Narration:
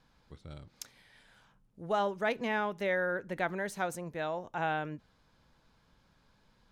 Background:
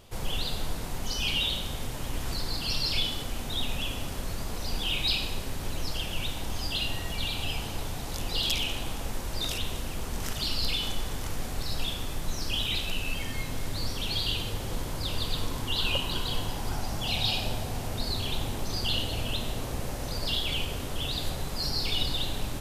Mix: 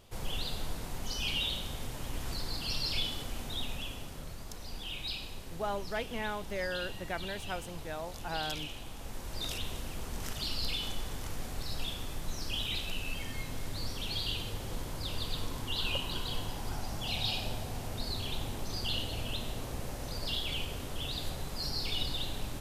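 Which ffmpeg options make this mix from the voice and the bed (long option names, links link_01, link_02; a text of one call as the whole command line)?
ffmpeg -i stem1.wav -i stem2.wav -filter_complex "[0:a]adelay=3700,volume=-5dB[link_01];[1:a]volume=0.5dB,afade=type=out:start_time=3.4:duration=0.85:silence=0.501187,afade=type=in:start_time=8.92:duration=0.56:silence=0.530884[link_02];[link_01][link_02]amix=inputs=2:normalize=0" out.wav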